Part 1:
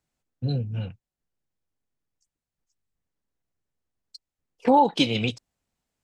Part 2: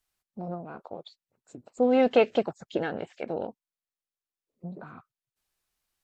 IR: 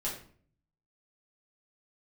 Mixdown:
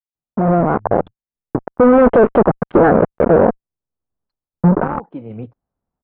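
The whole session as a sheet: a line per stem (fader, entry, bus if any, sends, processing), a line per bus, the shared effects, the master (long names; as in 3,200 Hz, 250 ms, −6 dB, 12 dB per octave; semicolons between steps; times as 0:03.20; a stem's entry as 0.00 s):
−8.0 dB, 0.15 s, no send, automatic ducking −12 dB, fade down 0.35 s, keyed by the second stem
−2.5 dB, 0.00 s, no send, fuzz pedal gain 40 dB, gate −43 dBFS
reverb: not used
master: low-pass filter 1,300 Hz 24 dB per octave; automatic gain control gain up to 11 dB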